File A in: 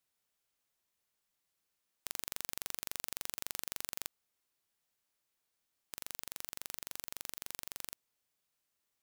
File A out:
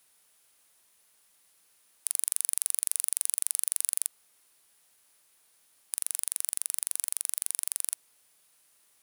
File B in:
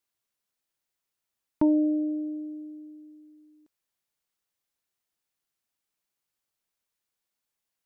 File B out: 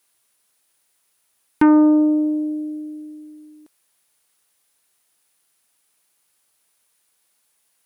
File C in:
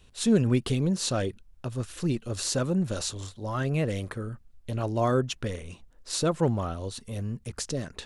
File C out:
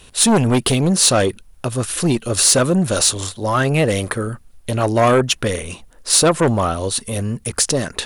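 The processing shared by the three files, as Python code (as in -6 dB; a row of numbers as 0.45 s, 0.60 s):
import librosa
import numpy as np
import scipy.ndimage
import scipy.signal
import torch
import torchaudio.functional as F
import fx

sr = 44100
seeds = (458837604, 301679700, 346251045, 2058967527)

p1 = fx.peak_eq(x, sr, hz=9800.0, db=10.5, octaves=0.27)
p2 = fx.fold_sine(p1, sr, drive_db=12, ceiling_db=-8.5)
p3 = p1 + (p2 * librosa.db_to_amplitude(-9.5))
p4 = fx.low_shelf(p3, sr, hz=260.0, db=-8.0)
y = p4 * librosa.db_to_amplitude(6.5)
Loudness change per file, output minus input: +12.5 LU, +9.5 LU, +12.0 LU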